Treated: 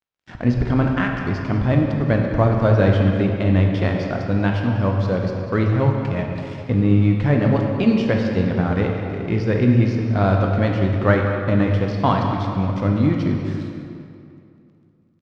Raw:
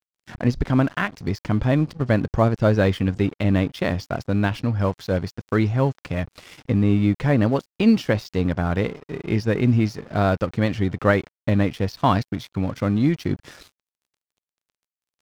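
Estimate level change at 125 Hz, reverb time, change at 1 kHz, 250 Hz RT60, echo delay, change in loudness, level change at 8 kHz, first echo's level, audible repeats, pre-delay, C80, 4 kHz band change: +4.0 dB, 2.5 s, +2.0 dB, 2.6 s, 0.194 s, +2.5 dB, n/a, -14.0 dB, 1, 13 ms, 3.5 dB, -0.5 dB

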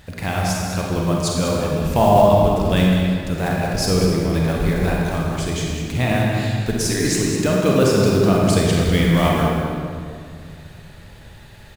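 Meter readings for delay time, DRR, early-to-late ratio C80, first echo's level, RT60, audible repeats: 0.198 s, -3.0 dB, 0.0 dB, -8.0 dB, 2.3 s, 1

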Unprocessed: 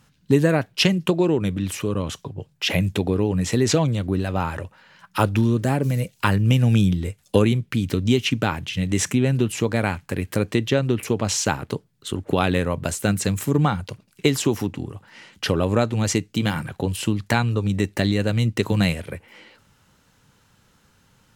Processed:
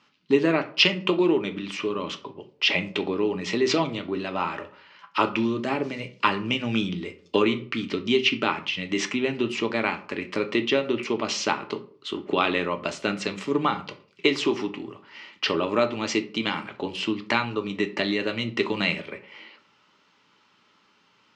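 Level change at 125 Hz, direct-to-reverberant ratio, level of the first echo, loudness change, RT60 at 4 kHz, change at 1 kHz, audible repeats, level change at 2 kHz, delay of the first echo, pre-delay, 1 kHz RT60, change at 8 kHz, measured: -16.0 dB, 6.5 dB, none, -3.5 dB, 0.30 s, 0.0 dB, none, +1.5 dB, none, 3 ms, 0.45 s, -10.5 dB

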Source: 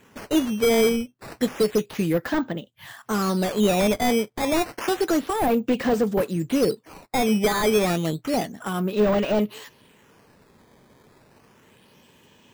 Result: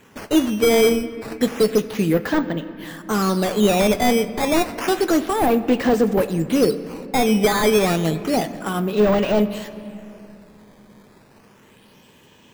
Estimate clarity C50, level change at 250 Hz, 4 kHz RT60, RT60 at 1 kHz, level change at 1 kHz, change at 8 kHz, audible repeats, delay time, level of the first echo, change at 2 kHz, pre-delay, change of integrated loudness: 13.5 dB, +4.0 dB, 1.8 s, 2.8 s, +4.0 dB, +3.5 dB, none, none, none, +4.0 dB, 3 ms, +3.5 dB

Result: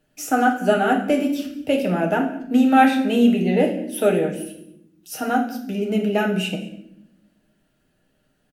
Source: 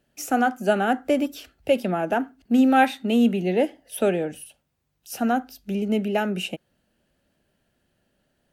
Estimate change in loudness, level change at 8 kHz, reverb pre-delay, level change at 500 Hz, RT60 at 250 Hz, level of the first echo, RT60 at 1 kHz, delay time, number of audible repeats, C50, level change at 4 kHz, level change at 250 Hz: +3.0 dB, +3.0 dB, 6 ms, +3.0 dB, 1.3 s, -22.0 dB, 0.65 s, 0.203 s, 1, 8.0 dB, +3.0 dB, +3.5 dB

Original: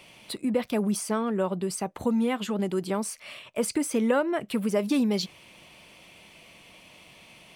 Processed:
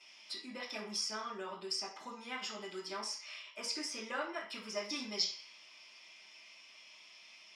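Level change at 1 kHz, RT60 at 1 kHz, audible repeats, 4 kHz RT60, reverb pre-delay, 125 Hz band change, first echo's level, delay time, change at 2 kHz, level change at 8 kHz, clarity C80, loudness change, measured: -10.0 dB, 0.50 s, none, 0.65 s, 3 ms, under -20 dB, none, none, -6.0 dB, -8.5 dB, 10.5 dB, -12.0 dB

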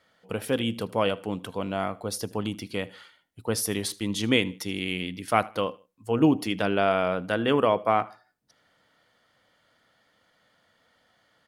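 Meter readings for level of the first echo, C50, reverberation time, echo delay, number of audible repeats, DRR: -22.5 dB, none, none, 78 ms, 2, none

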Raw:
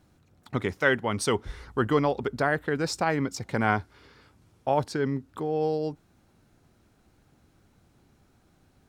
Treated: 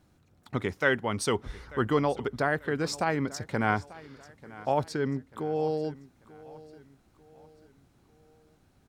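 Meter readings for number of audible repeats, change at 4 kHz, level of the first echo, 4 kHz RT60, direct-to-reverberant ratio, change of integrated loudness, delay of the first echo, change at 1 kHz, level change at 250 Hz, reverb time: 3, -2.0 dB, -19.5 dB, none, none, -2.0 dB, 0.89 s, -2.0 dB, -2.0 dB, none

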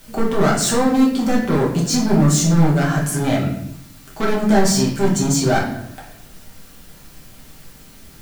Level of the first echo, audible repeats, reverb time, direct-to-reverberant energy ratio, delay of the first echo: none, none, 0.75 s, -4.5 dB, none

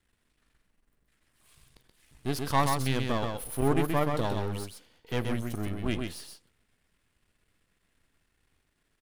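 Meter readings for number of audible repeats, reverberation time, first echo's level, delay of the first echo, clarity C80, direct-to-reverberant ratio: 1, none, -4.5 dB, 0.128 s, none, none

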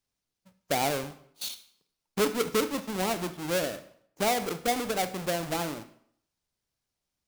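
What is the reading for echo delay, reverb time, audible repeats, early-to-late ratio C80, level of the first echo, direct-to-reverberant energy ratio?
none, 0.65 s, none, 16.5 dB, none, 11.0 dB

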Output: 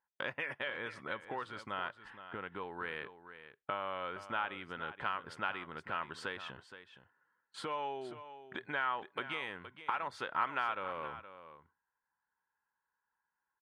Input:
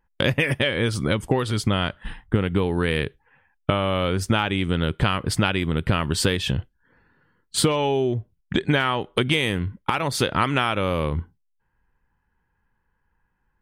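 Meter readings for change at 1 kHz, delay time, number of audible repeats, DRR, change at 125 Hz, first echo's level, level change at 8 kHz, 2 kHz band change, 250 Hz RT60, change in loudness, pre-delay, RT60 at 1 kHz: -10.5 dB, 0.47 s, 1, none, -32.0 dB, -12.5 dB, -30.0 dB, -12.5 dB, none, -16.5 dB, none, none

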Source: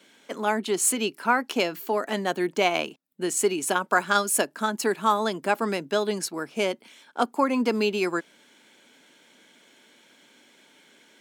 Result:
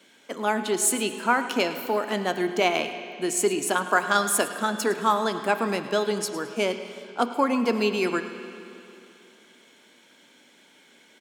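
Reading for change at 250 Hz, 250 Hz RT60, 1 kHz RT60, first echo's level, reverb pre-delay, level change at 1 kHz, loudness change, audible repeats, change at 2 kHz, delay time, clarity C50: +0.5 dB, 2.9 s, 2.9 s, -16.5 dB, 8 ms, +0.5 dB, +0.5 dB, 2, +1.0 dB, 0.108 s, 9.0 dB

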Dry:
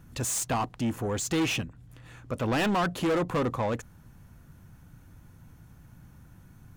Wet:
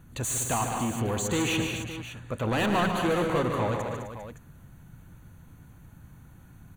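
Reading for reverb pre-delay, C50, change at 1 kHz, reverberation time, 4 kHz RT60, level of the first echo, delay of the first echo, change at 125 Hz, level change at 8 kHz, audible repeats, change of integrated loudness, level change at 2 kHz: none, none, +2.0 dB, none, none, -13.0 dB, 0.113 s, +2.0 dB, +1.5 dB, 6, +0.5 dB, +2.0 dB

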